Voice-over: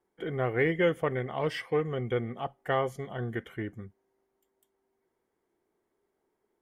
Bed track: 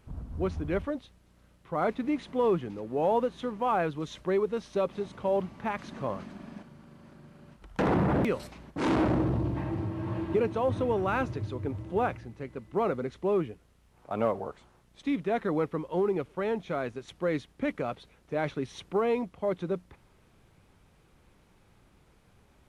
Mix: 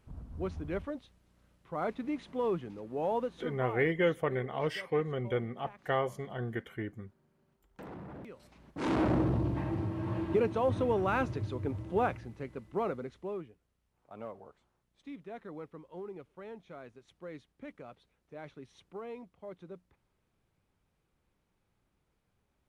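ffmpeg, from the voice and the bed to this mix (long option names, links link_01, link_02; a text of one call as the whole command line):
ffmpeg -i stem1.wav -i stem2.wav -filter_complex "[0:a]adelay=3200,volume=-2.5dB[link_01];[1:a]volume=13dB,afade=type=out:start_time=3.33:duration=0.5:silence=0.188365,afade=type=in:start_time=8.37:duration=0.79:silence=0.112202,afade=type=out:start_time=12.36:duration=1.13:silence=0.188365[link_02];[link_01][link_02]amix=inputs=2:normalize=0" out.wav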